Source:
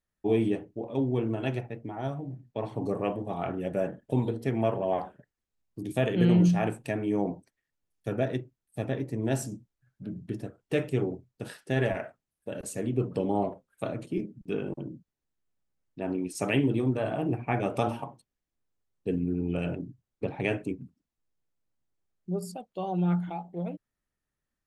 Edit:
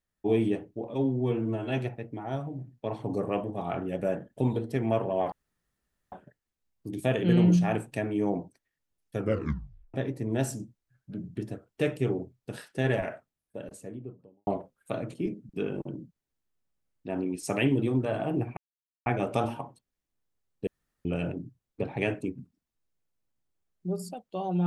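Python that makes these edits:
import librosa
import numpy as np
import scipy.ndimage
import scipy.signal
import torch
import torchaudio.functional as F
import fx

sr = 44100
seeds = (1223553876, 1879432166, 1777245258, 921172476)

y = fx.studio_fade_out(x, sr, start_s=12.02, length_s=1.37)
y = fx.edit(y, sr, fx.stretch_span(start_s=0.94, length_s=0.56, factor=1.5),
    fx.insert_room_tone(at_s=5.04, length_s=0.8),
    fx.tape_stop(start_s=8.11, length_s=0.75),
    fx.insert_silence(at_s=17.49, length_s=0.49),
    fx.room_tone_fill(start_s=19.1, length_s=0.38), tone=tone)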